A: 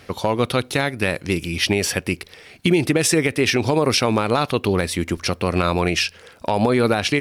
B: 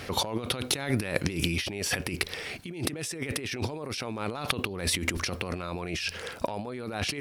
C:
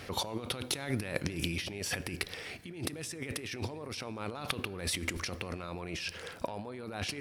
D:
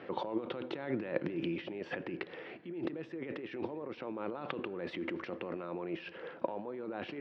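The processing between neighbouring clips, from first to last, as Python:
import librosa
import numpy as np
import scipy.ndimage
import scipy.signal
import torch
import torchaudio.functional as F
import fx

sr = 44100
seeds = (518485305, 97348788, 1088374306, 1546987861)

y1 = fx.over_compress(x, sr, threshold_db=-30.0, ratio=-1.0)
y1 = y1 * 10.0 ** (-2.5 / 20.0)
y2 = fx.rev_fdn(y1, sr, rt60_s=3.1, lf_ratio=1.0, hf_ratio=0.4, size_ms=61.0, drr_db=17.0)
y2 = y2 * 10.0 ** (-6.0 / 20.0)
y3 = fx.cabinet(y2, sr, low_hz=150.0, low_slope=24, high_hz=2700.0, hz=(340.0, 530.0, 920.0, 2300.0), db=(9, 6, 3, -5))
y3 = y3 * 10.0 ** (-3.0 / 20.0)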